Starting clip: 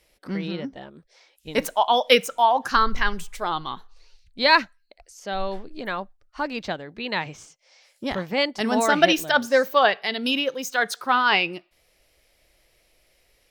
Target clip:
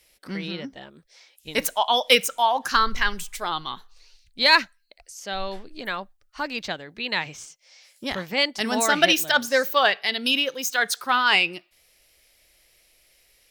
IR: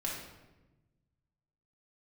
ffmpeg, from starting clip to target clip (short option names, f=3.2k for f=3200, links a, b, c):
-filter_complex "[0:a]highshelf=f=6.5k:g=5.5,acrossover=split=1500[a][b];[b]acontrast=61[c];[a][c]amix=inputs=2:normalize=0,volume=-3.5dB"